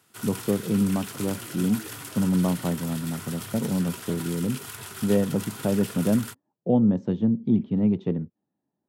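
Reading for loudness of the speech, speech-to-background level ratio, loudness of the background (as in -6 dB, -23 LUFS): -26.0 LUFS, 11.0 dB, -37.0 LUFS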